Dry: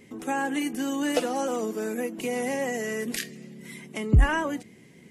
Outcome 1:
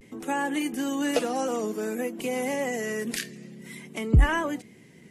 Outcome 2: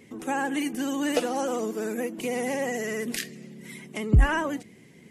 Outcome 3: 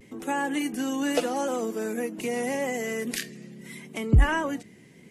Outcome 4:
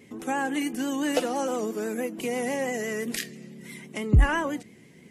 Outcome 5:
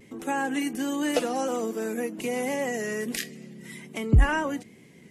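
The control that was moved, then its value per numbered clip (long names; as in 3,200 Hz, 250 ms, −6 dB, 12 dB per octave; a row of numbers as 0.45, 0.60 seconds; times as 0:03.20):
pitch vibrato, speed: 0.53, 16, 0.8, 6, 1.3 Hertz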